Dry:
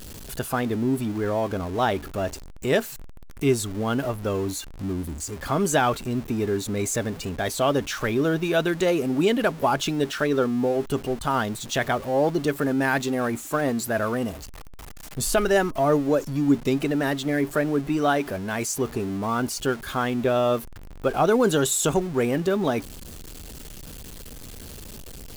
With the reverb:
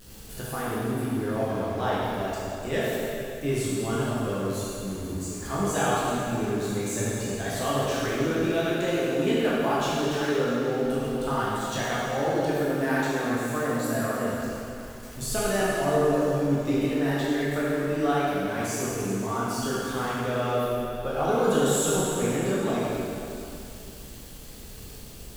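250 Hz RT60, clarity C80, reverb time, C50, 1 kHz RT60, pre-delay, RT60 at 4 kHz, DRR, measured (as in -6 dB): 2.9 s, -2.0 dB, 2.8 s, -4.0 dB, 2.8 s, 6 ms, 2.6 s, -8.5 dB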